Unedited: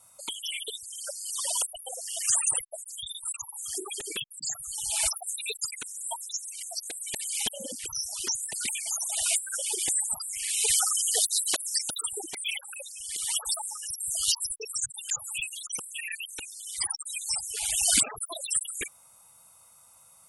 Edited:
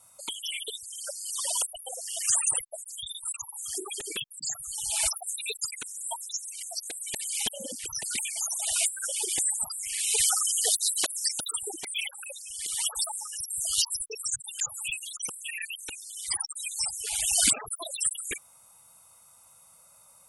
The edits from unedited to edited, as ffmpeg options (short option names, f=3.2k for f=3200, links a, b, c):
-filter_complex "[0:a]asplit=2[a][b];[a]atrim=end=7.992[c];[b]atrim=start=8.488[d];[c][d]acrossfade=d=0.004:c1=hsin:c2=hsin"